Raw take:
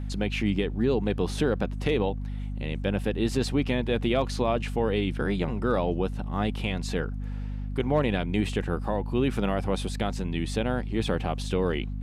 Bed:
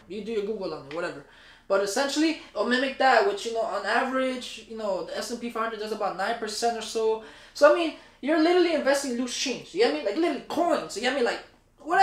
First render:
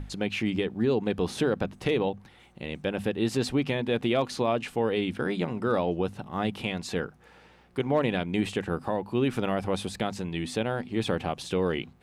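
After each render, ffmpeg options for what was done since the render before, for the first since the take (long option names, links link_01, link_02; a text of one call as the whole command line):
ffmpeg -i in.wav -af "bandreject=frequency=50:width_type=h:width=6,bandreject=frequency=100:width_type=h:width=6,bandreject=frequency=150:width_type=h:width=6,bandreject=frequency=200:width_type=h:width=6,bandreject=frequency=250:width_type=h:width=6" out.wav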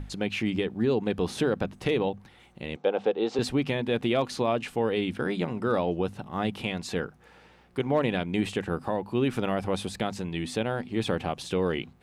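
ffmpeg -i in.wav -filter_complex "[0:a]asettb=1/sr,asplit=3[link_01][link_02][link_03];[link_01]atrim=end=2.764[link_04];[link_02]atrim=start=2.76:end=3.39,asetpts=PTS-STARTPTS,afade=type=in:duration=0.004:curve=qsin,afade=type=out:start_time=0.626:duration=0.004:curve=qsin,highpass=330,equalizer=frequency=470:width_type=q:width=4:gain=10,equalizer=frequency=790:width_type=q:width=4:gain=9,equalizer=frequency=1300:width_type=q:width=4:gain=3,equalizer=frequency=1800:width_type=q:width=4:gain=-7,equalizer=frequency=2700:width_type=q:width=4:gain=-4,equalizer=frequency=4900:width_type=q:width=4:gain=-5,lowpass=frequency=5400:width=0.5412,lowpass=frequency=5400:width=1.3066[link_05];[link_03]atrim=start=3.386[link_06];[link_04][link_05]acrossfade=duration=0.004:curve1=hsin:curve2=qsin[link_07];[link_07][link_06]acrossfade=duration=0.004:curve1=qsin:curve2=hsin" out.wav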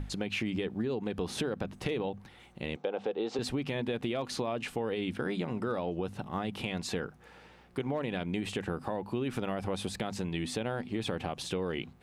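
ffmpeg -i in.wav -af "alimiter=limit=-19dB:level=0:latency=1:release=67,acompressor=threshold=-29dB:ratio=6" out.wav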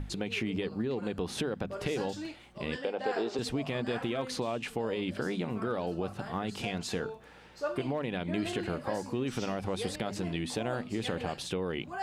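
ffmpeg -i in.wav -i bed.wav -filter_complex "[1:a]volume=-17dB[link_01];[0:a][link_01]amix=inputs=2:normalize=0" out.wav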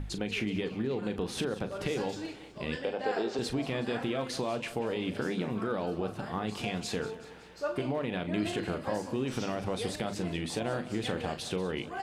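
ffmpeg -i in.wav -filter_complex "[0:a]asplit=2[link_01][link_02];[link_02]adelay=38,volume=-11dB[link_03];[link_01][link_03]amix=inputs=2:normalize=0,aecho=1:1:186|372|558|744|930:0.168|0.0923|0.0508|0.0279|0.0154" out.wav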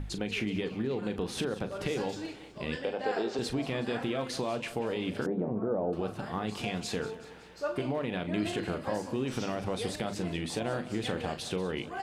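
ffmpeg -i in.wav -filter_complex "[0:a]asettb=1/sr,asplit=3[link_01][link_02][link_03];[link_01]atrim=end=5.264[link_04];[link_02]atrim=start=5.26:end=5.93,asetpts=PTS-STARTPTS,afade=type=in:duration=0.004:curve=qsin,afade=type=out:start_time=0.666:duration=0.004:curve=qsin,lowpass=frequency=660:width_type=q:width=1.5[link_05];[link_03]atrim=start=5.926[link_06];[link_04][link_05]acrossfade=duration=0.004:curve1=hsin:curve2=qsin[link_07];[link_07][link_06]acrossfade=duration=0.004:curve1=qsin:curve2=hsin" out.wav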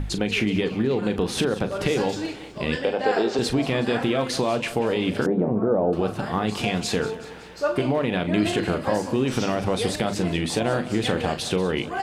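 ffmpeg -i in.wav -af "volume=9.5dB" out.wav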